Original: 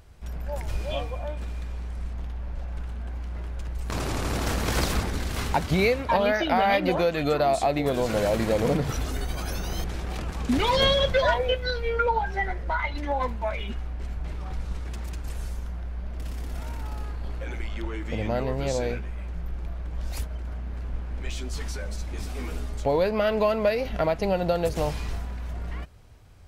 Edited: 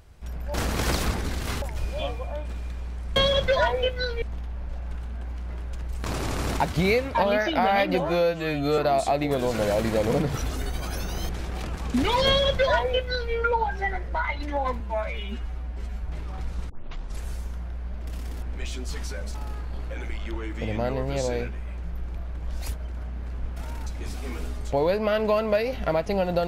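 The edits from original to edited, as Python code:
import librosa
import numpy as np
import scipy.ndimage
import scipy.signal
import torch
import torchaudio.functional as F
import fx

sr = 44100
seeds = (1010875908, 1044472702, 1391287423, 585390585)

y = fx.edit(x, sr, fx.move(start_s=4.43, length_s=1.08, to_s=0.54),
    fx.stretch_span(start_s=6.94, length_s=0.39, factor=2.0),
    fx.duplicate(start_s=10.82, length_s=1.06, to_s=2.08),
    fx.stretch_span(start_s=13.35, length_s=0.85, factor=1.5),
    fx.tape_start(start_s=14.82, length_s=0.54),
    fx.swap(start_s=16.55, length_s=0.3, other_s=21.07, other_length_s=0.92), tone=tone)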